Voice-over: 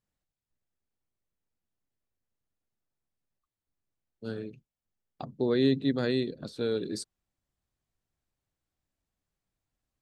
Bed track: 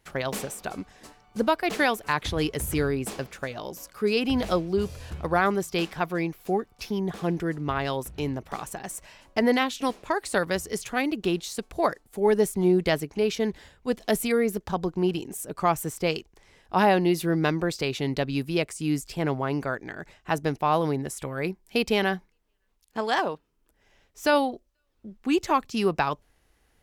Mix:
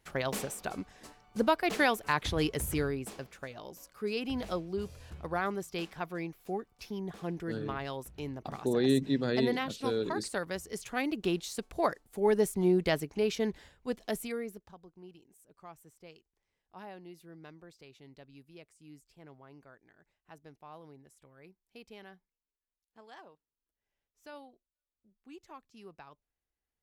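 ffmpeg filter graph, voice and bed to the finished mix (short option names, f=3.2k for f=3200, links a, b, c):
-filter_complex "[0:a]adelay=3250,volume=-2dB[a];[1:a]volume=1.5dB,afade=t=out:st=2.55:d=0.55:silence=0.473151,afade=t=in:st=10.64:d=0.55:silence=0.562341,afade=t=out:st=13.51:d=1.26:silence=0.0794328[b];[a][b]amix=inputs=2:normalize=0"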